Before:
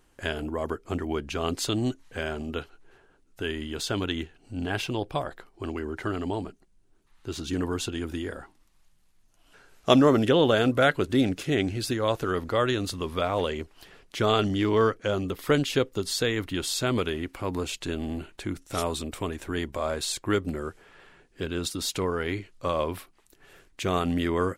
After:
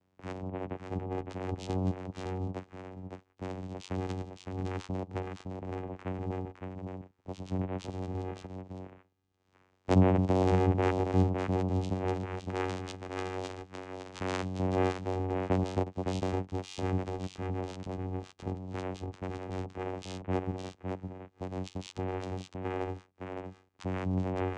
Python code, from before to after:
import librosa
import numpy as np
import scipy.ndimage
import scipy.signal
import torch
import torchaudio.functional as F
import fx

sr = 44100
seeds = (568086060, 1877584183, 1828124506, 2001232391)

y = fx.tilt_shelf(x, sr, db=-6.5, hz=920.0, at=(12.13, 14.59))
y = fx.vocoder(y, sr, bands=4, carrier='saw', carrier_hz=93.1)
y = y + 10.0 ** (-5.0 / 20.0) * np.pad(y, (int(561 * sr / 1000.0), 0))[:len(y)]
y = y * librosa.db_to_amplitude(-5.5)